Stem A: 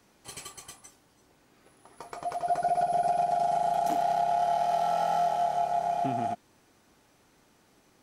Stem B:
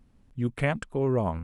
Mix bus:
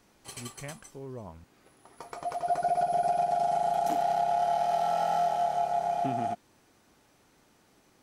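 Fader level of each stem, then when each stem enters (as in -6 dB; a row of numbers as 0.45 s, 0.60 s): -0.5 dB, -16.0 dB; 0.00 s, 0.00 s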